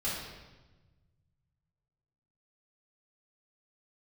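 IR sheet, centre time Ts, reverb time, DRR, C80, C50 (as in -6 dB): 74 ms, 1.2 s, -9.0 dB, 3.5 dB, 0.5 dB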